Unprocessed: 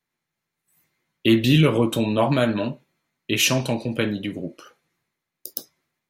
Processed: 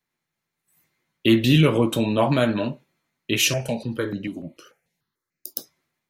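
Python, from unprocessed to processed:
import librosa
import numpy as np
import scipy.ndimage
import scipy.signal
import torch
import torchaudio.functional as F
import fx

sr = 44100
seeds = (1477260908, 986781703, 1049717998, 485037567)

y = fx.phaser_held(x, sr, hz=6.8, low_hz=220.0, high_hz=3400.0, at=(3.39, 5.56))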